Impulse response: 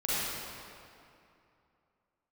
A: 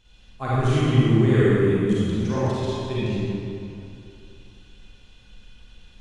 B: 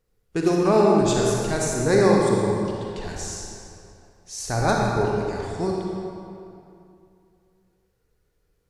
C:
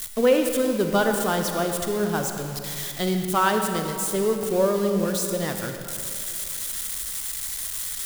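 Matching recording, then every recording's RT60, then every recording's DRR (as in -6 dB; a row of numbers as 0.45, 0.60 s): A; 2.6, 2.6, 2.6 s; -10.5, -2.0, 4.0 dB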